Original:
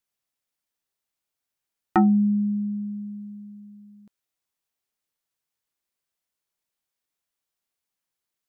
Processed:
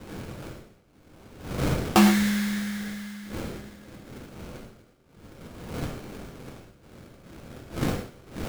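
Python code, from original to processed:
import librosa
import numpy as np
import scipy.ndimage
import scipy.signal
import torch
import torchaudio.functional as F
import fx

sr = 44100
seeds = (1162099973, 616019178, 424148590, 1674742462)

y = fx.dmg_wind(x, sr, seeds[0], corner_hz=390.0, level_db=-38.0)
y = fx.sample_hold(y, sr, seeds[1], rate_hz=1900.0, jitter_pct=20)
y = fx.rev_gated(y, sr, seeds[2], gate_ms=140, shape='flat', drr_db=3.5)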